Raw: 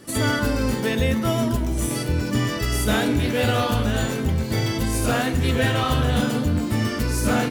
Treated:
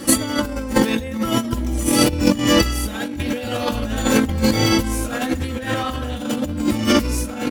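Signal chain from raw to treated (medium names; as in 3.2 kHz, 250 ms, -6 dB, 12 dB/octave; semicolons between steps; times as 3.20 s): comb 3.7 ms, depth 67%; in parallel at -12 dB: crossover distortion -36 dBFS; on the sum: compressor with a negative ratio -24 dBFS, ratio -0.5; trim +5.5 dB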